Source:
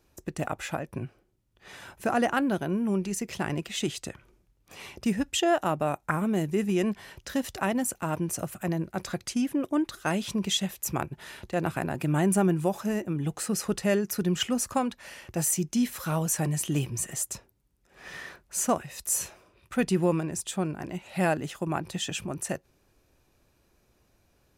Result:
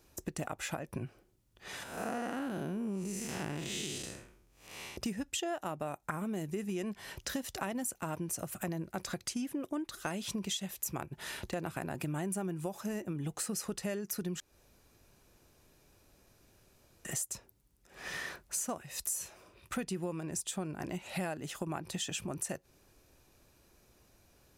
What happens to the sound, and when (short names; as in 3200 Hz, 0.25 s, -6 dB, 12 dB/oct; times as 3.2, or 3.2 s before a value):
1.83–4.97 time blur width 0.203 s
14.4–17.05 room tone
whole clip: tone controls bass -1 dB, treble +4 dB; compressor 6:1, threshold -36 dBFS; gain +1.5 dB